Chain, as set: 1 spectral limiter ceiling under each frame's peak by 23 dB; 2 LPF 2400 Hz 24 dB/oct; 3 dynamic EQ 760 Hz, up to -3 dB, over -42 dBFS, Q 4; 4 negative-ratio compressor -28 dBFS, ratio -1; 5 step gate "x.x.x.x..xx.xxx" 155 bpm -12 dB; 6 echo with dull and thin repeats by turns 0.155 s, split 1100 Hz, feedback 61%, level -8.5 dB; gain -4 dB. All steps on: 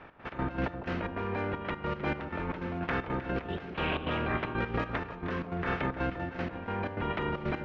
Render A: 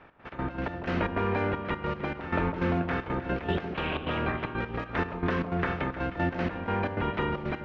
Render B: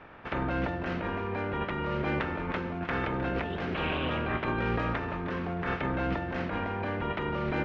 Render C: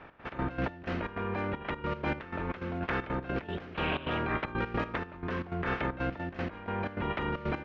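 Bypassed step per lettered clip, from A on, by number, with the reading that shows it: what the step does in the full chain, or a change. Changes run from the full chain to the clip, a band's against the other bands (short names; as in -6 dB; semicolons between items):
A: 4, loudness change +3.5 LU; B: 5, crest factor change -2.0 dB; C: 6, echo-to-direct -10.5 dB to none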